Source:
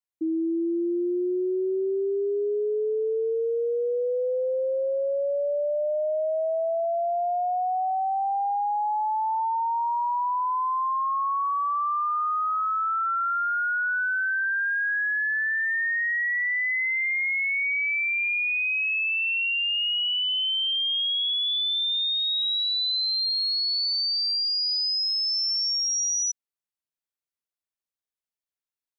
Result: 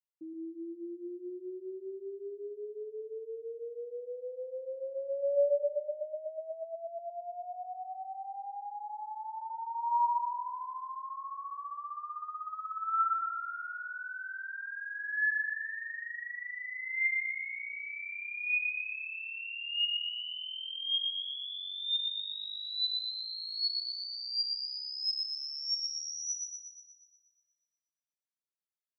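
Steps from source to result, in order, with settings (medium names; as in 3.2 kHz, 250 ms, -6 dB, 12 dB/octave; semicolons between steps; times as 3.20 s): feedback comb 190 Hz, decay 0.23 s, harmonics odd, mix 90%; thinning echo 120 ms, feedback 59%, high-pass 220 Hz, level -4 dB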